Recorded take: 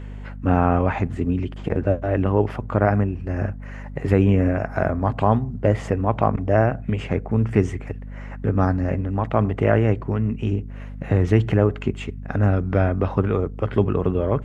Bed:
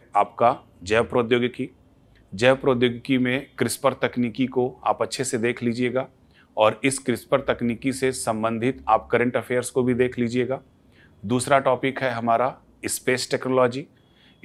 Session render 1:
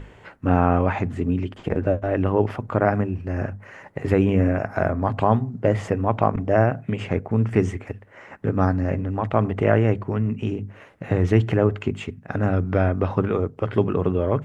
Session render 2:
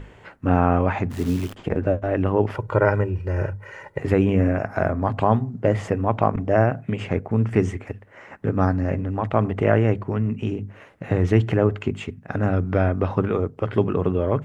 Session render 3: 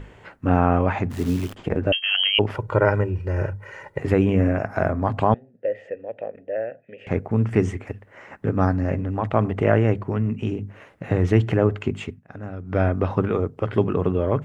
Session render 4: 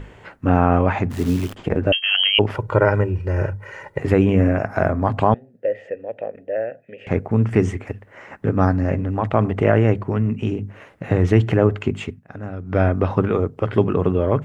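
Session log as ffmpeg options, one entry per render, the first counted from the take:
-af "bandreject=f=50:t=h:w=6,bandreject=f=100:t=h:w=6,bandreject=f=150:t=h:w=6,bandreject=f=200:t=h:w=6,bandreject=f=250:t=h:w=6"
-filter_complex "[0:a]asplit=3[a][b][c];[a]afade=t=out:st=1.1:d=0.02[d];[b]acrusher=bits=7:dc=4:mix=0:aa=0.000001,afade=t=in:st=1.1:d=0.02,afade=t=out:st=1.54:d=0.02[e];[c]afade=t=in:st=1.54:d=0.02[f];[d][e][f]amix=inputs=3:normalize=0,asettb=1/sr,asplit=3[g][h][i];[g]atrim=end=2.544[j];[h]atrim=start=2.54:end=4,asetpts=PTS-STARTPTS,afade=t=in:d=0.004:c=qsin,afade=t=out:st=1.456:d=0.004:c=qsin,aecho=1:1:2.1:0.8,atrim=end_sample=64386[k];[i]atrim=start=3.996[l];[j][k]acrossfade=d=0.004:c1=hsin:c2=qsin[m];[m][l]acrossfade=d=0.004:c1=qsin:c2=hsin"
-filter_complex "[0:a]asettb=1/sr,asplit=3[a][b][c];[a]atrim=end=1.924[d];[b]atrim=start=1.92:end=2.39,asetpts=PTS-STARTPTS,afade=t=in:d=0.004:c=qsin,afade=t=out:st=0.466:d=0.004:c=qsin,lowpass=f=2.8k:t=q:w=0.5098,lowpass=f=2.8k:t=q:w=0.6013,lowpass=f=2.8k:t=q:w=0.9,lowpass=f=2.8k:t=q:w=2.563,afreqshift=-3300[e];[c]atrim=start=2.386[f];[d][e]acrossfade=d=0.004:c1=hsin:c2=qsin[g];[g][f]acrossfade=d=0.004:c1=qsin:c2=hsin,asettb=1/sr,asplit=3[h][i][j];[h]atrim=end=5.344[k];[i]atrim=start=5.34:end=7.07,asetpts=PTS-STARTPTS,afade=t=in:d=0.004:c=qsin,afade=t=out:st=1.726:d=0.004:c=qsin,asplit=3[l][m][n];[l]bandpass=f=530:t=q:w=8,volume=0dB[o];[m]bandpass=f=1.84k:t=q:w=8,volume=-6dB[p];[n]bandpass=f=2.48k:t=q:w=8,volume=-9dB[q];[o][p][q]amix=inputs=3:normalize=0[r];[j]atrim=start=7.066[s];[k][r]acrossfade=d=0.004:c1=hsin:c2=qsin[t];[t][s]acrossfade=d=0.004:c1=qsin:c2=hsin,asplit=3[u][v][w];[u]atrim=end=12.23,asetpts=PTS-STARTPTS,afade=t=out:st=12.07:d=0.16:silence=0.237137[x];[v]atrim=start=12.23:end=12.64,asetpts=PTS-STARTPTS,volume=-12.5dB[y];[w]atrim=start=12.64,asetpts=PTS-STARTPTS,afade=t=in:d=0.16:silence=0.237137[z];[x][y][z]concat=n=3:v=0:a=1"
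-af "volume=3dB,alimiter=limit=-2dB:level=0:latency=1"

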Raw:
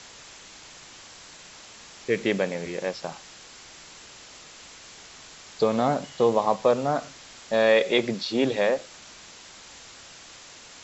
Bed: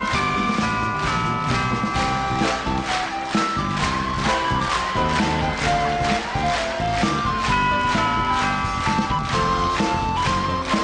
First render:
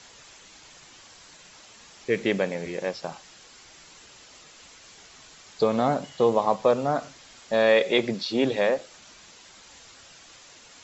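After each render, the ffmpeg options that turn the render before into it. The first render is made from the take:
-af "afftdn=nr=6:nf=-47"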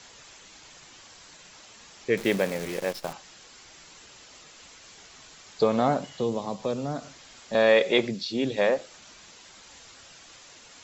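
-filter_complex "[0:a]asettb=1/sr,asplit=3[a][b][c];[a]atrim=end=2.174[d];[b]atrim=start=2.17:end=3.13,asetpts=PTS-STARTPTS,afade=t=in:d=0.004:c=qsin,afade=t=out:st=0.956:d=0.004:c=qsin,acrusher=bits=7:dc=4:mix=0:aa=0.000001[e];[c]atrim=start=3.126[f];[d][e]acrossfade=d=0.004:c1=hsin:c2=qsin[g];[g][f]acrossfade=d=0.004:c1=qsin:c2=hsin,asettb=1/sr,asplit=3[h][i][j];[h]atrim=end=6.074[k];[i]atrim=start=6.07:end=7.55,asetpts=PTS-STARTPTS,afade=t=in:d=0.004:c=qsin,afade=t=out:st=1.476:d=0.004:c=qsin,acrossover=split=350|3000[l][m][n];[m]acompressor=threshold=-42dB:ratio=2:attack=3.2:release=140:knee=2.83:detection=peak[o];[l][o][n]amix=inputs=3:normalize=0[p];[j]atrim=start=7.546[q];[k][p]acrossfade=d=0.004:c1=hsin:c2=qsin[r];[r][q]acrossfade=d=0.004:c1=qsin:c2=hsin,asplit=3[s][t][u];[s]afade=t=out:st=8.07:d=0.02[v];[t]equalizer=f=950:w=0.58:g=-11.5,afade=t=in:st=8.07:d=0.02,afade=t=out:st=8.57:d=0.02[w];[u]afade=t=in:st=8.57:d=0.02[x];[v][w][x]amix=inputs=3:normalize=0"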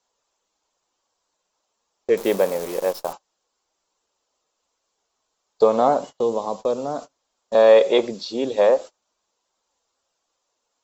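-af "agate=range=-28dB:threshold=-37dB:ratio=16:detection=peak,equalizer=f=125:t=o:w=1:g=-9,equalizer=f=500:t=o:w=1:g=7,equalizer=f=1k:t=o:w=1:g=8,equalizer=f=2k:t=o:w=1:g=-7,equalizer=f=16k:t=o:w=1:g=10"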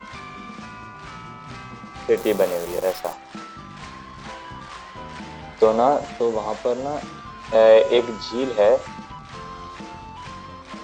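-filter_complex "[1:a]volume=-16dB[a];[0:a][a]amix=inputs=2:normalize=0"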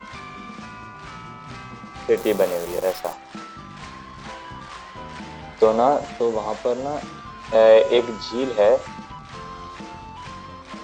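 -af anull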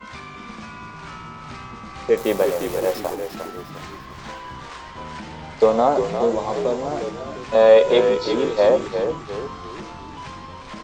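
-filter_complex "[0:a]asplit=2[a][b];[b]adelay=13,volume=-11.5dB[c];[a][c]amix=inputs=2:normalize=0,asplit=2[d][e];[e]asplit=5[f][g][h][i][j];[f]adelay=352,afreqshift=-56,volume=-7.5dB[k];[g]adelay=704,afreqshift=-112,volume=-15.2dB[l];[h]adelay=1056,afreqshift=-168,volume=-23dB[m];[i]adelay=1408,afreqshift=-224,volume=-30.7dB[n];[j]adelay=1760,afreqshift=-280,volume=-38.5dB[o];[k][l][m][n][o]amix=inputs=5:normalize=0[p];[d][p]amix=inputs=2:normalize=0"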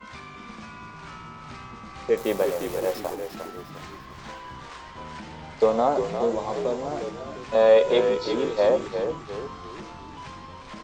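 -af "volume=-4.5dB"

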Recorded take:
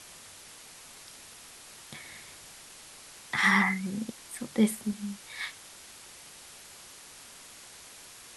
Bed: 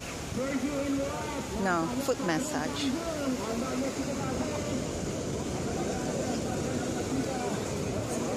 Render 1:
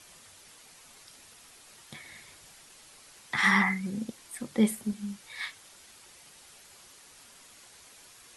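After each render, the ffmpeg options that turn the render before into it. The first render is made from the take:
-af "afftdn=nr=6:nf=-50"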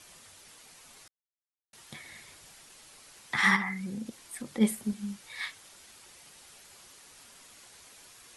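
-filter_complex "[0:a]asplit=3[a][b][c];[a]afade=t=out:st=3.55:d=0.02[d];[b]acompressor=threshold=-35dB:ratio=2:attack=3.2:release=140:knee=1:detection=peak,afade=t=in:st=3.55:d=0.02,afade=t=out:st=4.6:d=0.02[e];[c]afade=t=in:st=4.6:d=0.02[f];[d][e][f]amix=inputs=3:normalize=0,asplit=3[g][h][i];[g]atrim=end=1.08,asetpts=PTS-STARTPTS,afade=t=out:st=1.076:d=0.004:c=hsin[j];[h]atrim=start=1.08:end=1.73,asetpts=PTS-STARTPTS,volume=0[k];[i]atrim=start=1.73,asetpts=PTS-STARTPTS,afade=t=in:d=0.004:c=hsin[l];[j][k][l]concat=n=3:v=0:a=1"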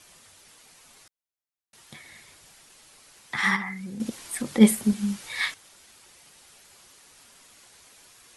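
-filter_complex "[0:a]asplit=3[a][b][c];[a]atrim=end=4.002[d];[b]atrim=start=3.998:end=5.542,asetpts=PTS-STARTPTS,volume=9.5dB[e];[c]atrim=start=5.538[f];[d][e]acrossfade=d=0.004:c1=hsin:c2=hsin[g];[g][f]acrossfade=d=0.004:c1=hsin:c2=hsin"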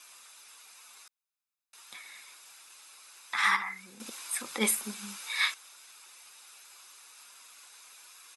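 -af "highpass=700,aecho=1:1:0.8:0.4"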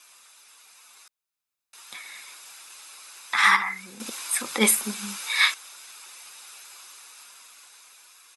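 -af "dynaudnorm=f=470:g=7:m=8.5dB"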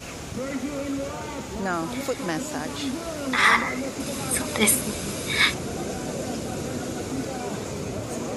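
-filter_complex "[1:a]volume=1dB[a];[0:a][a]amix=inputs=2:normalize=0"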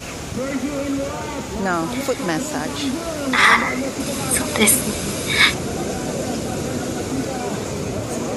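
-af "volume=6dB,alimiter=limit=-1dB:level=0:latency=1"

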